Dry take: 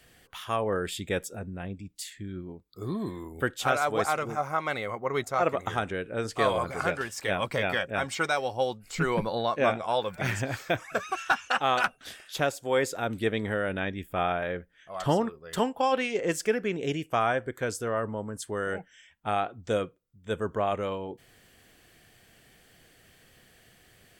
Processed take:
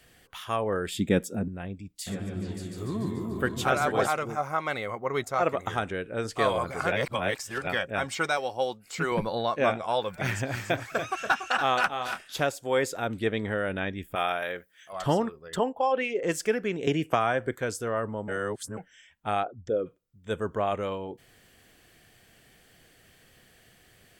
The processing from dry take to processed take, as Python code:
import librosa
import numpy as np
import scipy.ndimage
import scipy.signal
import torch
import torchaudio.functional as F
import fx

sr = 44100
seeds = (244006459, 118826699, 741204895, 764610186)

y = fx.peak_eq(x, sr, hz=220.0, db=13.5, octaves=1.5, at=(0.94, 1.48))
y = fx.echo_opening(y, sr, ms=145, hz=200, octaves=2, feedback_pct=70, wet_db=0, at=(2.06, 4.07), fade=0.02)
y = fx.highpass(y, sr, hz=230.0, slope=6, at=(8.37, 9.12))
y = fx.echo_multitap(y, sr, ms=(285, 310), db=(-8.0, -16.5), at=(10.26, 12.43))
y = fx.high_shelf(y, sr, hz=11000.0, db=-11.5, at=(13.08, 13.58))
y = fx.riaa(y, sr, side='recording', at=(14.15, 14.93))
y = fx.envelope_sharpen(y, sr, power=1.5, at=(15.48, 16.23))
y = fx.band_squash(y, sr, depth_pct=100, at=(16.87, 17.55))
y = fx.envelope_sharpen(y, sr, power=2.0, at=(19.42, 19.85), fade=0.02)
y = fx.edit(y, sr, fx.reverse_span(start_s=6.92, length_s=0.75),
    fx.reverse_span(start_s=18.28, length_s=0.49), tone=tone)